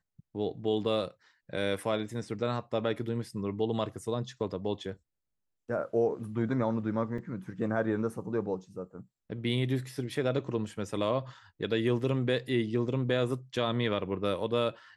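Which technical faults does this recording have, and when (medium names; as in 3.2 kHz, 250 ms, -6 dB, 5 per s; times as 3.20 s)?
7.18 s: dropout 3.3 ms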